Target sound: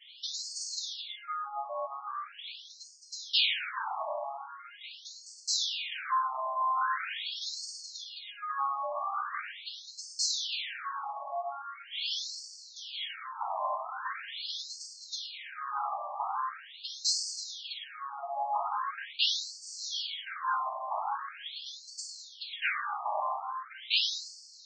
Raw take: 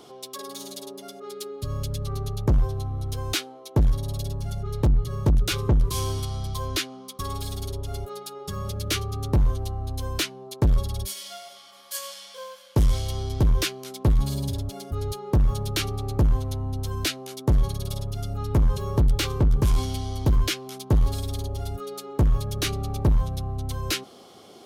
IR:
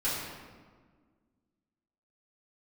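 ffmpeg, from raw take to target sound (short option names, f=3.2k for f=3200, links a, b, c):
-filter_complex "[0:a]asoftclip=type=tanh:threshold=-22dB,adynamicsmooth=sensitivity=6:basefreq=7.2k[a];[1:a]atrim=start_sample=2205,asetrate=28224,aresample=44100[b];[a][b]afir=irnorm=-1:irlink=0,afftfilt=real='re*between(b*sr/1024,830*pow(6200/830,0.5+0.5*sin(2*PI*0.42*pts/sr))/1.41,830*pow(6200/830,0.5+0.5*sin(2*PI*0.42*pts/sr))*1.41)':imag='im*between(b*sr/1024,830*pow(6200/830,0.5+0.5*sin(2*PI*0.42*pts/sr))/1.41,830*pow(6200/830,0.5+0.5*sin(2*PI*0.42*pts/sr))*1.41)':win_size=1024:overlap=0.75"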